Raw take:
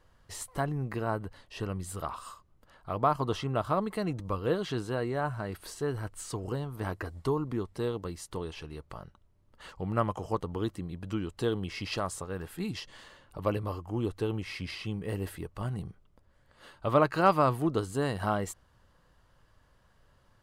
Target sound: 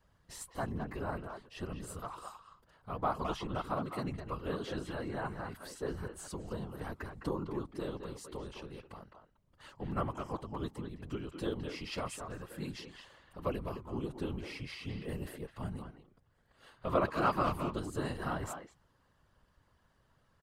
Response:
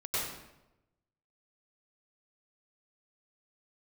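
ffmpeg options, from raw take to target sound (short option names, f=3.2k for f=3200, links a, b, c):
-filter_complex "[0:a]asplit=2[a][b];[b]adelay=210,highpass=300,lowpass=3.4k,asoftclip=type=hard:threshold=-19dB,volume=-6dB[c];[a][c]amix=inputs=2:normalize=0,afftfilt=real='hypot(re,im)*cos(2*PI*random(0))':imag='hypot(re,im)*sin(2*PI*random(1))':win_size=512:overlap=0.75,adynamicequalizer=threshold=0.00398:dfrequency=510:dqfactor=1.9:tfrequency=510:tqfactor=1.9:attack=5:release=100:ratio=0.375:range=2.5:mode=cutabove:tftype=bell"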